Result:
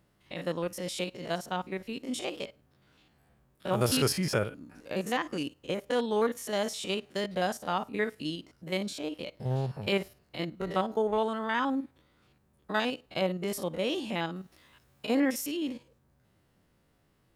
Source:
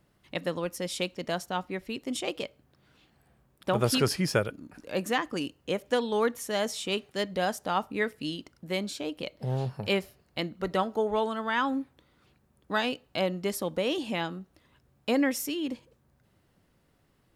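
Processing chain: spectrogram pixelated in time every 50 ms; 3.72–4.19 s: treble shelf 6.3 kHz +7 dB; 14.36–15.73 s: tape noise reduction on one side only encoder only

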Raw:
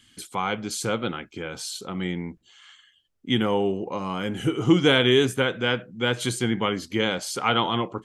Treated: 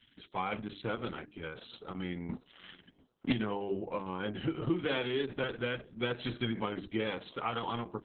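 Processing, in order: 4.84–5.44 s: high-pass 140 Hz 24 dB/octave; 6.61–7.70 s: peaking EQ 10 kHz -10.5 dB 0.81 oct; hum notches 50/100/150/200/250/300/350/400/450 Hz; compression 6:1, threshold -22 dBFS, peak gain reduction 10 dB; 2.29–3.33 s: waveshaping leveller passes 3; distance through air 92 m; tape echo 687 ms, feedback 42%, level -23.5 dB, low-pass 2.2 kHz; trim -5.5 dB; Opus 6 kbps 48 kHz

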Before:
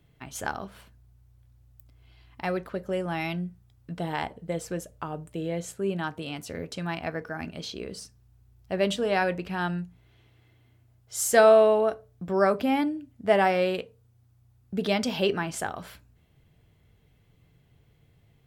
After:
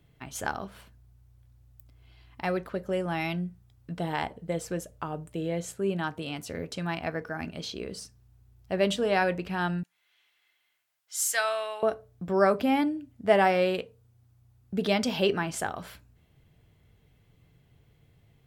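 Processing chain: 9.83–11.83 s: high-pass 1.5 kHz 12 dB/octave

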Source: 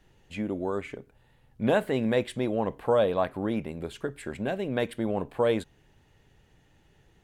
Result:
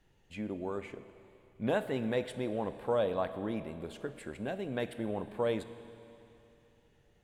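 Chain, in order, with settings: Schroeder reverb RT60 3 s, combs from 26 ms, DRR 11.5 dB; trim -7 dB

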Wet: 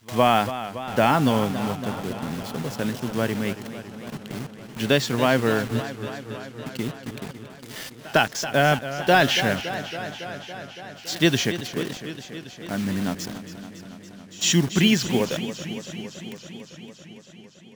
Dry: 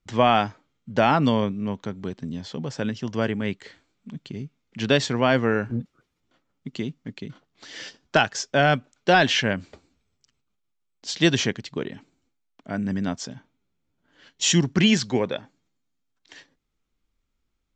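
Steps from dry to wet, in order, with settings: word length cut 6-bit, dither none; reverse echo 104 ms -23 dB; modulated delay 280 ms, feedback 76%, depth 85 cents, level -12.5 dB

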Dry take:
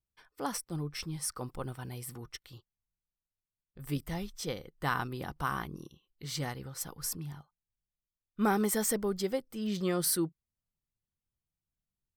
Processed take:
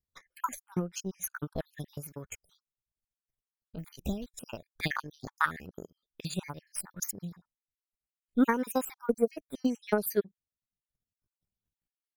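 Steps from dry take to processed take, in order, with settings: random holes in the spectrogram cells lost 54%; pitch shift +3 st; transient shaper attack +12 dB, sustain -4 dB; trim -2 dB

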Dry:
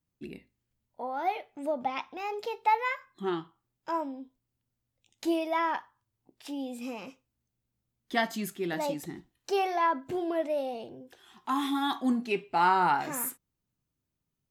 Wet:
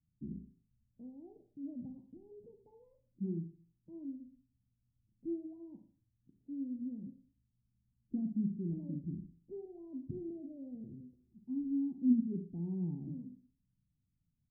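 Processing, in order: inverse Chebyshev low-pass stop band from 1.3 kHz, stop band 80 dB; Schroeder reverb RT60 0.46 s, combs from 32 ms, DRR 7 dB; trim +4.5 dB

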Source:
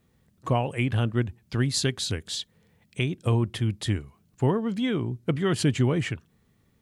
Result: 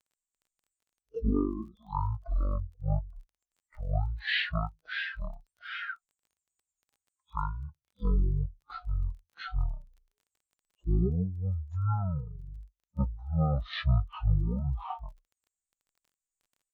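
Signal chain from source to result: expander on every frequency bin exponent 2; wide varispeed 0.407×; crackle 20 per s -53 dBFS; trim -1 dB

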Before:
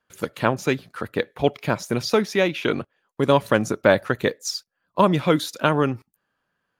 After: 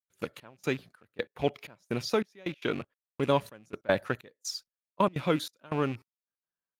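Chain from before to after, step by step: rattle on loud lows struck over -32 dBFS, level -26 dBFS; gate -42 dBFS, range -17 dB; trance gate ".xxxx...xxxx...x" 189 bpm -24 dB; trim -8 dB

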